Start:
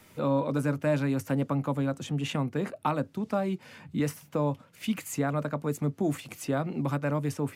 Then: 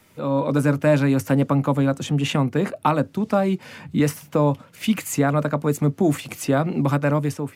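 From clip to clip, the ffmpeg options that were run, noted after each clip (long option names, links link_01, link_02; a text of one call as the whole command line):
ffmpeg -i in.wav -af "dynaudnorm=framelen=110:gausssize=7:maxgain=9dB" out.wav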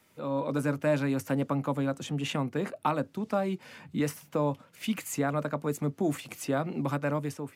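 ffmpeg -i in.wav -af "lowshelf=frequency=130:gain=-8,volume=-8dB" out.wav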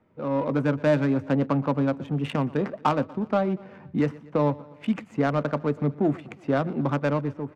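ffmpeg -i in.wav -af "adynamicsmooth=sensitivity=2.5:basefreq=1000,aecho=1:1:120|240|360|480:0.0891|0.0508|0.029|0.0165,volume=5.5dB" out.wav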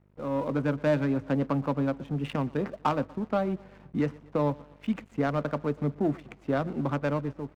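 ffmpeg -i in.wav -af "aeval=exprs='val(0)+0.00355*(sin(2*PI*50*n/s)+sin(2*PI*2*50*n/s)/2+sin(2*PI*3*50*n/s)/3+sin(2*PI*4*50*n/s)/4+sin(2*PI*5*50*n/s)/5)':channel_layout=same,aeval=exprs='sgn(val(0))*max(abs(val(0))-0.00299,0)':channel_layout=same,volume=-3.5dB" out.wav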